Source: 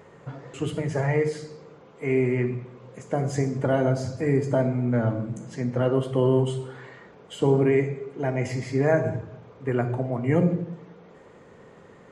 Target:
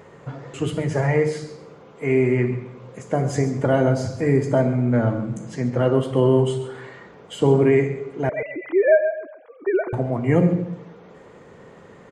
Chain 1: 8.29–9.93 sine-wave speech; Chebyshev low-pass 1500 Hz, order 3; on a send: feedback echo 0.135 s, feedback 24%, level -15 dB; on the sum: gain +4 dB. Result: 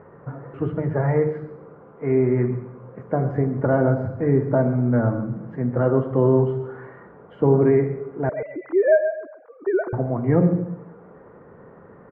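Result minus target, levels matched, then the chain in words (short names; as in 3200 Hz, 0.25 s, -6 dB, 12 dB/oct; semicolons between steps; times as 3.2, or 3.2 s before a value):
2000 Hz band -4.0 dB
8.29–9.93 sine-wave speech; on a send: feedback echo 0.135 s, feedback 24%, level -15 dB; on the sum: gain +4 dB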